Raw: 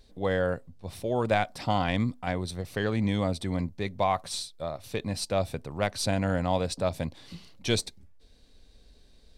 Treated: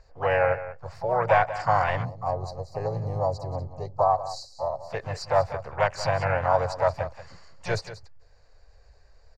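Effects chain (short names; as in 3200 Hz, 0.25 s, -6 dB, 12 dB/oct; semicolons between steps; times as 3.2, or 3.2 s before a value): EQ curve 110 Hz 0 dB, 220 Hz -22 dB, 540 Hz +5 dB, 1800 Hz +6 dB, 3300 Hz -25 dB, 4700 Hz +1 dB, 7800 Hz -26 dB; echo 0.186 s -13.5 dB; spectral gain 2.05–4.9, 880–3800 Hz -23 dB; harmoniser +3 st -10 dB, +7 st -8 dB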